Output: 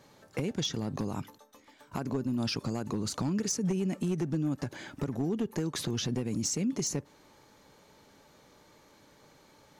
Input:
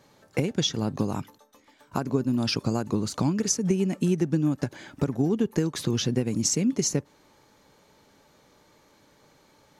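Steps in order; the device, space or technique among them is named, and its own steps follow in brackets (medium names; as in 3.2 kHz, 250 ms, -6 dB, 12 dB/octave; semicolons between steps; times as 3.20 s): clipper into limiter (hard clipper -17 dBFS, distortion -19 dB; peak limiter -24 dBFS, peak gain reduction 7 dB)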